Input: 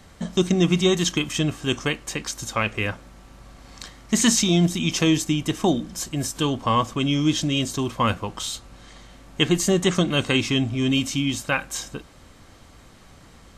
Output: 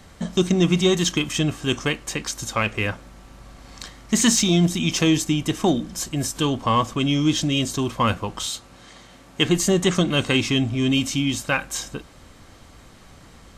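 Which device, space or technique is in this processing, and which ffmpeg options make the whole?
parallel distortion: -filter_complex "[0:a]asplit=2[s0][s1];[s1]asoftclip=type=hard:threshold=0.075,volume=0.224[s2];[s0][s2]amix=inputs=2:normalize=0,asettb=1/sr,asplit=3[s3][s4][s5];[s3]atrim=end=8.464[s6];[s4]atrim=start=8.46:end=9.45,asetpts=PTS-STARTPTS,afade=t=in:d=0.004:c=qsin,afade=t=out:st=0.986:d=0.004:c=qsin,highpass=f=140:p=1[s7];[s5]atrim=start=9.446[s8];[s6][s7]acrossfade=d=0.004:c1=hsin:c2=qsin[s9];[s9][s8]acrossfade=d=0.004:c1=qsin:c2=hsin"

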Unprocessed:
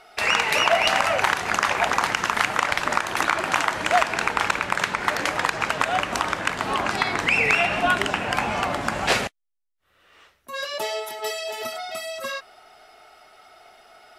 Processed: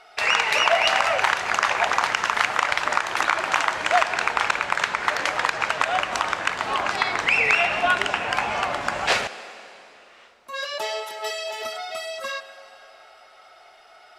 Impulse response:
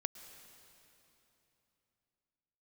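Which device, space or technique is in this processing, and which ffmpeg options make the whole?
filtered reverb send: -filter_complex "[0:a]asplit=2[s0][s1];[s1]highpass=410,lowpass=8600[s2];[1:a]atrim=start_sample=2205[s3];[s2][s3]afir=irnorm=-1:irlink=0,volume=1.5[s4];[s0][s4]amix=inputs=2:normalize=0,volume=0.473"

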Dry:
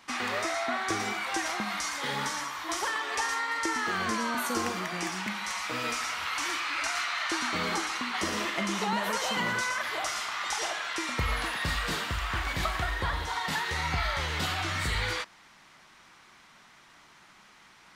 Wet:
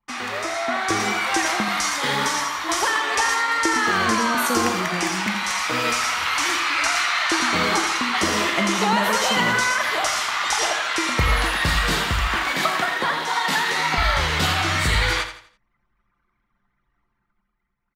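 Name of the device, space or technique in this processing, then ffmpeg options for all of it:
voice memo with heavy noise removal: -filter_complex "[0:a]asettb=1/sr,asplit=3[s0][s1][s2];[s0]atrim=end=12.274[s3];[s1]atrim=start=12.27:end=13.98,asetpts=PTS-STARTPTS,afade=t=in:d=0.004:c=qsin,afade=t=out:st=1.706:d=0.004:c=qsin,highpass=f=190:w=0.5412,highpass=f=190:w=1.3066[s4];[s2]atrim=start=13.976[s5];[s3][s4]acrossfade=d=0.004:c1=hsin:c2=qsin[s6];[s6][s5]acrossfade=d=0.004:c1=qsin:c2=hsin,anlmdn=0.1,dynaudnorm=f=120:g=13:m=2.24,aecho=1:1:83|166|249|332:0.316|0.111|0.0387|0.0136,volume=1.33"

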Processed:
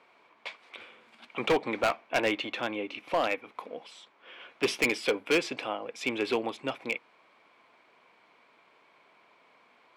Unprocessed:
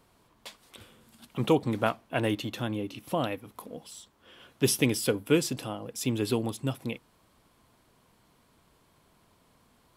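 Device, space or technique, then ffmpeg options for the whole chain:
megaphone: -af "highpass=480,lowpass=3000,equalizer=f=2300:t=o:w=0.26:g=11,asoftclip=type=hard:threshold=0.0562,volume=1.88"

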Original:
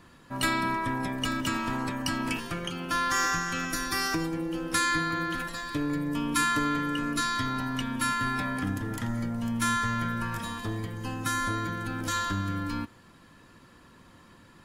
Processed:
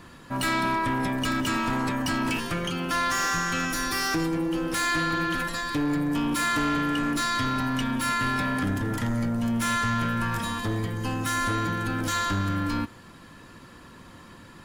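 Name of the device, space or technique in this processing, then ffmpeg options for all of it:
saturation between pre-emphasis and de-emphasis: -af "highshelf=f=5500:g=11.5,asoftclip=type=tanh:threshold=0.0422,highshelf=f=5500:g=-11.5,volume=2.24"

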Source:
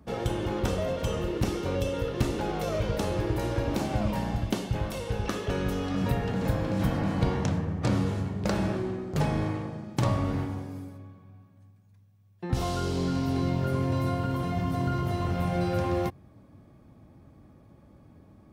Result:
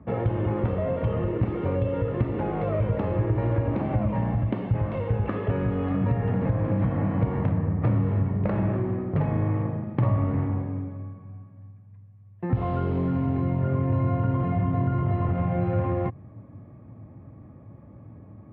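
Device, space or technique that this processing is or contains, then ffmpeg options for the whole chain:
bass amplifier: -af "lowpass=6000,acompressor=threshold=0.0398:ratio=6,highpass=66,equalizer=f=110:t=q:w=4:g=8,equalizer=f=380:t=q:w=4:g=-3,equalizer=f=800:t=q:w=4:g=-3,equalizer=f=1500:t=q:w=4:g=-7,lowpass=f=2000:w=0.5412,lowpass=f=2000:w=1.3066,volume=2.11"

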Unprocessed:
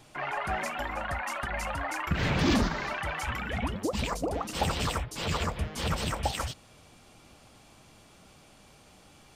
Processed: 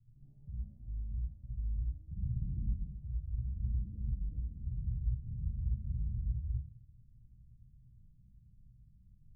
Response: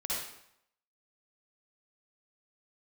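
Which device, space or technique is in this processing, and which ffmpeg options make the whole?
club heard from the street: -filter_complex "[0:a]alimiter=level_in=1.12:limit=0.0631:level=0:latency=1:release=49,volume=0.891,lowpass=f=130:w=0.5412,lowpass=f=130:w=1.3066[s0];[1:a]atrim=start_sample=2205[s1];[s0][s1]afir=irnorm=-1:irlink=0,volume=0.891"

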